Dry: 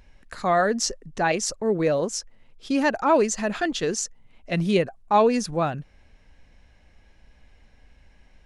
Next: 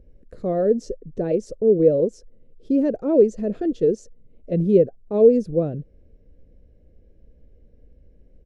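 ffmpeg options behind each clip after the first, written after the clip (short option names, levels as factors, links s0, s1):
-af "firequalizer=gain_entry='entry(230,0);entry(490,6);entry(830,-24)':delay=0.05:min_phase=1,volume=1.41"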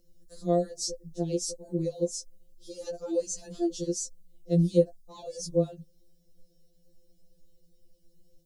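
-filter_complex "[0:a]acrossover=split=220[s0][s1];[s1]aexciter=amount=10.6:drive=7.7:freq=3500[s2];[s0][s2]amix=inputs=2:normalize=0,afftfilt=real='re*2.83*eq(mod(b,8),0)':imag='im*2.83*eq(mod(b,8),0)':win_size=2048:overlap=0.75,volume=0.447"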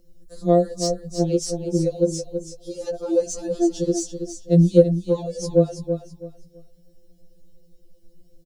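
-filter_complex "[0:a]asplit=2[s0][s1];[s1]adynamicsmooth=sensitivity=4.5:basefreq=3100,volume=0.794[s2];[s0][s2]amix=inputs=2:normalize=0,aecho=1:1:328|656|984:0.376|0.0977|0.0254,volume=1.5"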